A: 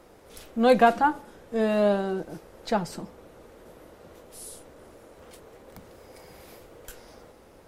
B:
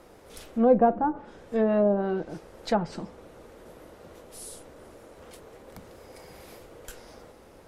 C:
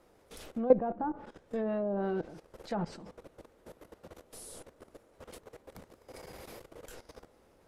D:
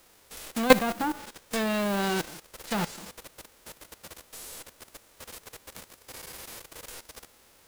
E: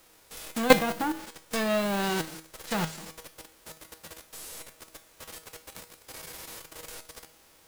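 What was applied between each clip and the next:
low-pass that closes with the level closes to 650 Hz, closed at -18 dBFS; trim +1 dB
level held to a coarse grid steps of 16 dB
formants flattened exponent 0.3; trim +5 dB
feedback comb 160 Hz, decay 0.36 s, harmonics all, mix 70%; trim +8 dB

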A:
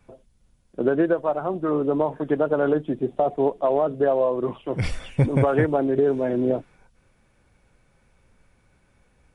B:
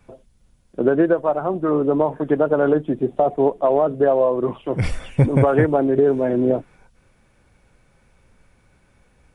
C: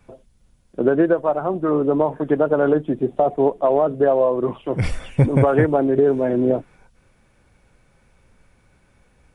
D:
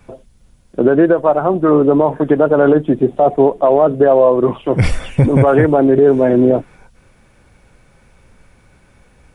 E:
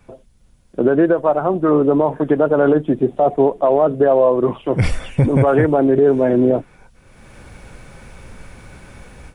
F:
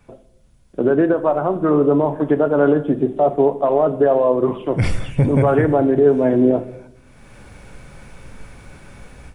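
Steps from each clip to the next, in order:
dynamic bell 4.1 kHz, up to -5 dB, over -48 dBFS, Q 0.83; trim +4 dB
no audible change
peak limiter -10 dBFS, peak gain reduction 6.5 dB; trim +8 dB
level rider gain up to 14.5 dB; trim -4.5 dB
simulated room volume 220 m³, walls mixed, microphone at 0.31 m; trim -2 dB

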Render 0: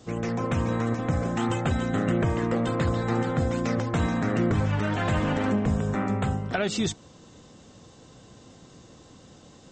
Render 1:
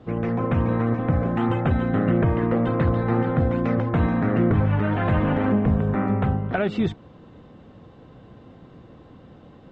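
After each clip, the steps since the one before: distance through air 500 m; trim +5 dB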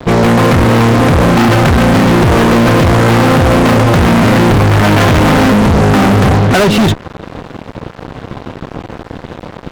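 fuzz box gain 36 dB, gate -45 dBFS; trim +6.5 dB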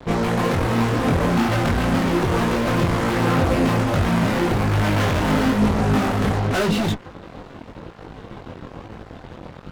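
chorus voices 4, 1.1 Hz, delay 21 ms, depth 3 ms; trim -8.5 dB

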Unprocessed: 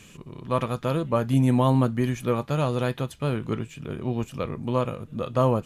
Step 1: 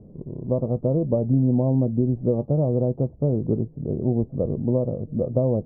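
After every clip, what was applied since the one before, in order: compression, threshold -23 dBFS, peak gain reduction 7.5 dB; steep low-pass 670 Hz 36 dB/octave; trim +7 dB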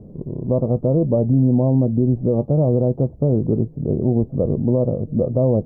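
peak limiter -15 dBFS, peak gain reduction 5 dB; trim +6 dB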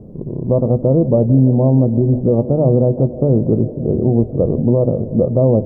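hum notches 50/100/150/200/250 Hz; feedback echo behind a band-pass 165 ms, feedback 84%, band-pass 420 Hz, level -16.5 dB; trim +4.5 dB

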